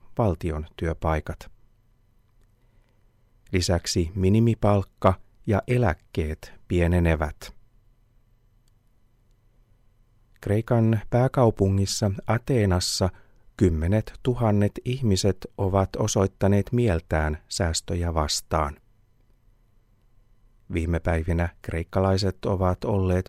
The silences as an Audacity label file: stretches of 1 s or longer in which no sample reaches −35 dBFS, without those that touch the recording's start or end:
1.480000	3.530000	silence
7.490000	10.430000	silence
18.720000	20.700000	silence